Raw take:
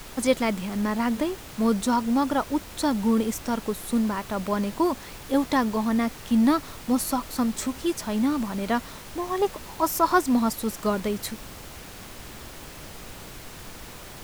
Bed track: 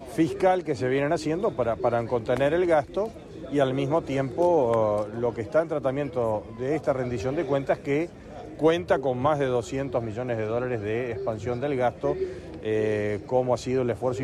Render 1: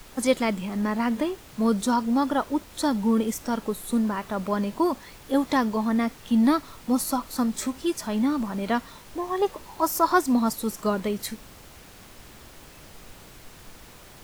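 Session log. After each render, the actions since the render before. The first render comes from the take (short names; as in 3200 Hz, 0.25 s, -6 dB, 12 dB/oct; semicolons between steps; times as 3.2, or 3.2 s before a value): noise print and reduce 6 dB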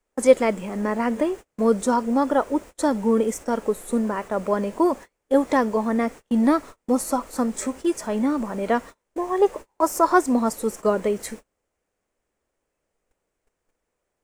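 gate -37 dBFS, range -33 dB; ten-band EQ 125 Hz -6 dB, 500 Hz +9 dB, 2000 Hz +3 dB, 4000 Hz -8 dB, 8000 Hz +8 dB, 16000 Hz -10 dB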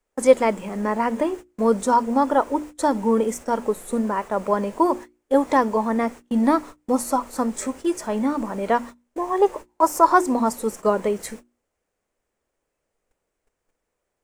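notches 60/120/180/240/300/360 Hz; dynamic EQ 930 Hz, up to +6 dB, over -37 dBFS, Q 2.9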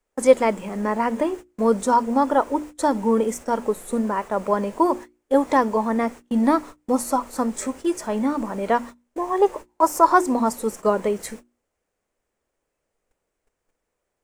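nothing audible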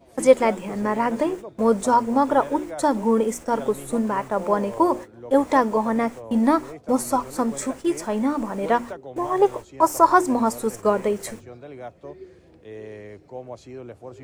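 add bed track -13 dB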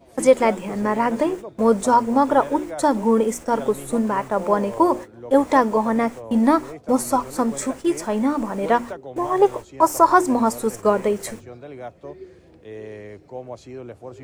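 gain +2 dB; limiter -3 dBFS, peak gain reduction 2.5 dB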